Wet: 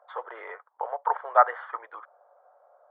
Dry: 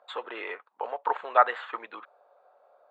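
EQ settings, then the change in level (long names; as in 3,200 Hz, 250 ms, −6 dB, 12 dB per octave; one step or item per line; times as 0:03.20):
Savitzky-Golay smoothing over 41 samples
high-pass filter 540 Hz 24 dB per octave
spectral tilt −1.5 dB per octave
+2.0 dB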